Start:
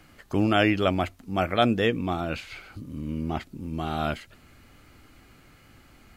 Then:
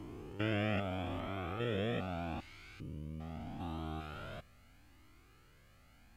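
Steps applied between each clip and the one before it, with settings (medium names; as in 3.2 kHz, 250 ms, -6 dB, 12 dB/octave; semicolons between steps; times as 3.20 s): spectrogram pixelated in time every 400 ms; Shepard-style flanger rising 0.79 Hz; trim -4.5 dB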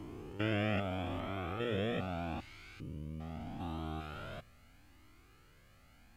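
hum notches 60/120 Hz; trim +1 dB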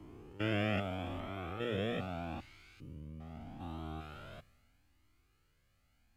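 three bands expanded up and down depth 40%; trim -2 dB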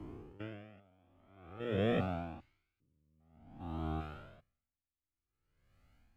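treble shelf 2.6 kHz -10 dB; logarithmic tremolo 0.51 Hz, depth 35 dB; trim +6 dB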